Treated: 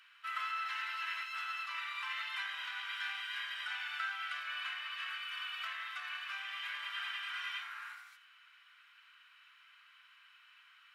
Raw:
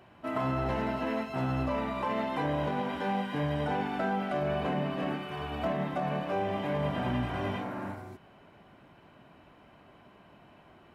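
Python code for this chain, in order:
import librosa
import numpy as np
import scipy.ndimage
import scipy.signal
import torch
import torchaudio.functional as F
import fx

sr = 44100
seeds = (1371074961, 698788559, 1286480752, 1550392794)

y = scipy.signal.sosfilt(scipy.signal.ellip(4, 1.0, 70, 1300.0, 'highpass', fs=sr, output='sos'), x)
y = fx.peak_eq(y, sr, hz=3200.0, db=5.0, octaves=1.6)
y = y + 10.0 ** (-15.0 / 20.0) * np.pad(y, (int(83 * sr / 1000.0), 0))[:len(y)]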